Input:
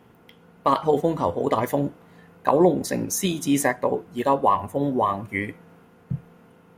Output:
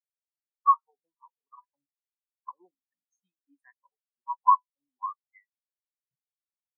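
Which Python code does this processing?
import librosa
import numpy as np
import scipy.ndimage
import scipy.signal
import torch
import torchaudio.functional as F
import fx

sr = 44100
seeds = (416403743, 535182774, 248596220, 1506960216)

y = fx.low_shelf_res(x, sr, hz=760.0, db=-12.0, q=1.5)
y = fx.spectral_expand(y, sr, expansion=4.0)
y = y * 10.0 ** (-1.5 / 20.0)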